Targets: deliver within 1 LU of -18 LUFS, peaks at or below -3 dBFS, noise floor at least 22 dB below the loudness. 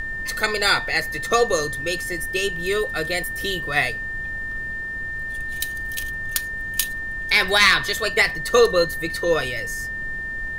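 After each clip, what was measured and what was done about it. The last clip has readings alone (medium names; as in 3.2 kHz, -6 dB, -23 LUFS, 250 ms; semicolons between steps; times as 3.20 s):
steady tone 1.8 kHz; tone level -27 dBFS; noise floor -30 dBFS; noise floor target -44 dBFS; loudness -21.5 LUFS; peak level -2.5 dBFS; loudness target -18.0 LUFS
-> band-stop 1.8 kHz, Q 30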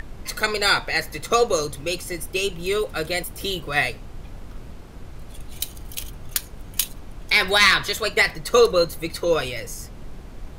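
steady tone not found; noise floor -40 dBFS; noise floor target -44 dBFS
-> noise print and reduce 6 dB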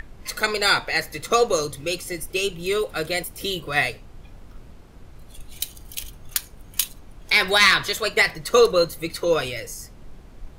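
noise floor -45 dBFS; loudness -22.0 LUFS; peak level -3.0 dBFS; loudness target -18.0 LUFS
-> trim +4 dB; peak limiter -3 dBFS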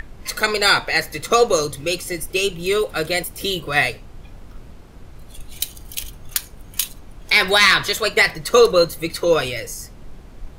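loudness -18.5 LUFS; peak level -3.0 dBFS; noise floor -41 dBFS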